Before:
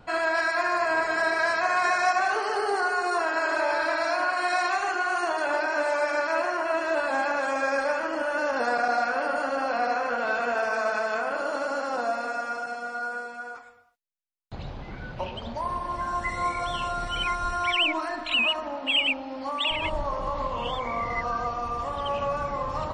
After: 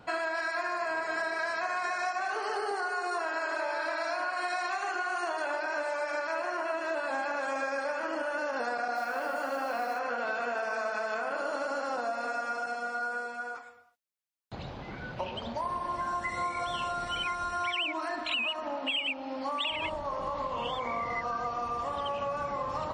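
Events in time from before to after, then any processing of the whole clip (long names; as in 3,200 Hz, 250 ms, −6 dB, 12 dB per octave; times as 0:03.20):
0:02.71–0:06.44: high-pass filter 250 Hz
0:08.95–0:09.99: noise that follows the level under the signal 26 dB
whole clip: downward compressor, threshold −29 dBFS; high-pass filter 140 Hz 6 dB per octave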